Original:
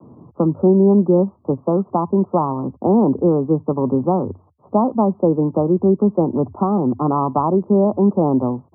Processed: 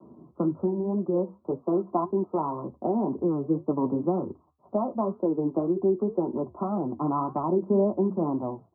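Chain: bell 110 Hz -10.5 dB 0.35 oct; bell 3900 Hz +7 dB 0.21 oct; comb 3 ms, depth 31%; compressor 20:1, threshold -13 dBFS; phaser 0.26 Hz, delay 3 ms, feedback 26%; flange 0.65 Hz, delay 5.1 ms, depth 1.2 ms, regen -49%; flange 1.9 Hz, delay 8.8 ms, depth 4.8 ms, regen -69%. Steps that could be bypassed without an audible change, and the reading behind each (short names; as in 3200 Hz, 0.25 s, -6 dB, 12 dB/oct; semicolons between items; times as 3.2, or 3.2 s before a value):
bell 3900 Hz: input band ends at 1200 Hz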